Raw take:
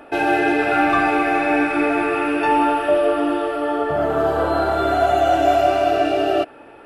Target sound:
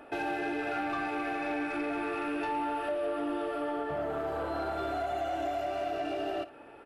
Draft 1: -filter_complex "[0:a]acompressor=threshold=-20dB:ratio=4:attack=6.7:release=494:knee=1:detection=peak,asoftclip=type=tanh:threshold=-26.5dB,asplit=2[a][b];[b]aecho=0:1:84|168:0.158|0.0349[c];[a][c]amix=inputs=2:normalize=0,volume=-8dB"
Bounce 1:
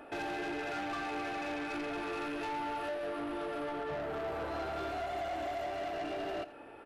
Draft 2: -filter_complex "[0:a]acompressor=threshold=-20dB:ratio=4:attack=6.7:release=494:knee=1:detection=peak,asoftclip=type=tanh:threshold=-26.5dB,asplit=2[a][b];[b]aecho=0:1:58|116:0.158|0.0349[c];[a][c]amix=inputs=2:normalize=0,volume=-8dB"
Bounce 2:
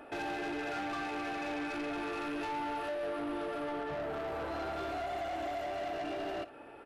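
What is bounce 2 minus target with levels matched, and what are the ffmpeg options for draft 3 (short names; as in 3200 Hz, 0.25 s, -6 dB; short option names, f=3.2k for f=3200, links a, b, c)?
soft clip: distortion +9 dB
-filter_complex "[0:a]acompressor=threshold=-20dB:ratio=4:attack=6.7:release=494:knee=1:detection=peak,asoftclip=type=tanh:threshold=-18dB,asplit=2[a][b];[b]aecho=0:1:58|116:0.158|0.0349[c];[a][c]amix=inputs=2:normalize=0,volume=-8dB"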